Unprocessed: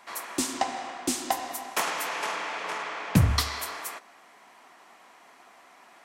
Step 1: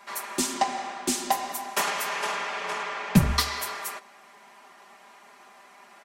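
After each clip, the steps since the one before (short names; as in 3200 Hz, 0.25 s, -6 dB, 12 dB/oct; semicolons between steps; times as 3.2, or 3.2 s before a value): comb 5 ms, depth 80%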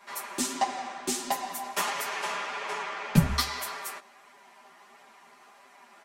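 chorus voices 2, 1.5 Hz, delay 10 ms, depth 3 ms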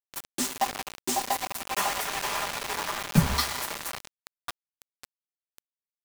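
delay with a stepping band-pass 0.549 s, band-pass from 760 Hz, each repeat 0.7 oct, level -2.5 dB; bit-crush 5-bit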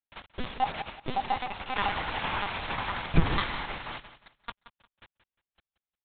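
LPC vocoder at 8 kHz pitch kept; feedback echo 0.177 s, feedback 25%, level -14 dB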